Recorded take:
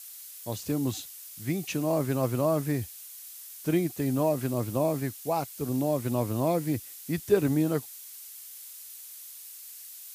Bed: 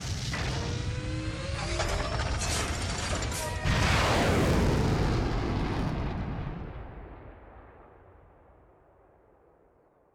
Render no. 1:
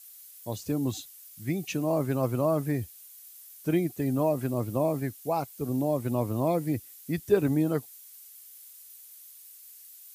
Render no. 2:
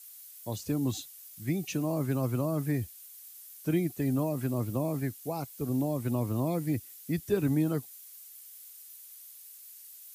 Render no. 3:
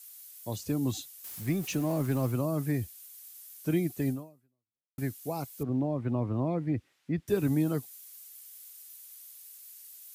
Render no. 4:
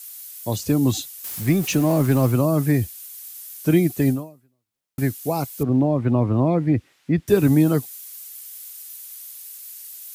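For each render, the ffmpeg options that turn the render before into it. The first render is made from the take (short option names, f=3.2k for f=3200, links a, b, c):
-af "afftdn=nr=8:nf=-45"
-filter_complex "[0:a]acrossover=split=360|780|3700[a][b][c][d];[b]acompressor=threshold=-41dB:ratio=6[e];[c]alimiter=level_in=11dB:limit=-24dB:level=0:latency=1,volume=-11dB[f];[a][e][f][d]amix=inputs=4:normalize=0"
-filter_complex "[0:a]asettb=1/sr,asplit=3[a][b][c];[a]atrim=end=1.244[d];[b]atrim=start=1.24:end=2.32,asetpts=PTS-STARTPTS,afade=t=in:d=0.004:c=qsin,afade=t=out:st=1.076:d=0.004:c=qsin,aeval=exprs='val(0)+0.5*0.00891*sgn(val(0))':c=same[e];[c]atrim=start=2.316[f];[d][e]acrossfade=d=0.004:c1=hsin:c2=qsin[g];[g][f]acrossfade=d=0.004:c1=qsin:c2=hsin,asettb=1/sr,asplit=3[h][i][j];[h]atrim=end=5.634[k];[i]atrim=start=5.63:end=7.28,asetpts=PTS-STARTPTS,afade=t=in:d=0.004:c=qsin,afade=t=out:st=1.646:d=0.004:c=qsin,lowpass=2.2k[l];[j]atrim=start=7.276[m];[k][l]acrossfade=d=0.004:c1=hsin:c2=qsin[n];[n][m]acrossfade=d=0.004:c1=qsin:c2=hsin,asplit=2[o][p];[o]atrim=end=4.98,asetpts=PTS-STARTPTS,afade=t=out:st=4.09:d=0.89:c=exp[q];[p]atrim=start=4.98,asetpts=PTS-STARTPTS,afade=t=in:d=0.004:c=hsin[r];[q][r]concat=n=2:v=0:a=1"
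-af "volume=11dB"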